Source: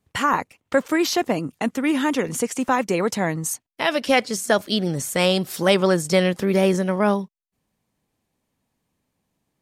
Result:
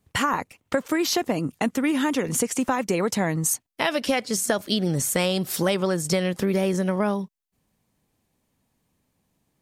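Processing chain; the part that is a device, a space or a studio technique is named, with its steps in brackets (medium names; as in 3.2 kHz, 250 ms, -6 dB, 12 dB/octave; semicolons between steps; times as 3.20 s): ASMR close-microphone chain (bass shelf 200 Hz +3.5 dB; compression, threshold -21 dBFS, peak gain reduction 9.5 dB; treble shelf 7.2 kHz +4 dB); trim +1.5 dB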